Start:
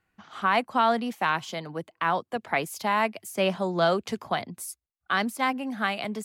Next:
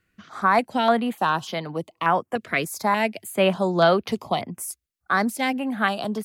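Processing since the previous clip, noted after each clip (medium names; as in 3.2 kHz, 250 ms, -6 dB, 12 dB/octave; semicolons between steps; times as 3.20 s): step-sequenced notch 3.4 Hz 850–7500 Hz; trim +5.5 dB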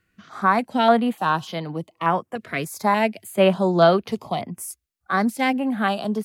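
harmonic-percussive split harmonic +8 dB; trim -4.5 dB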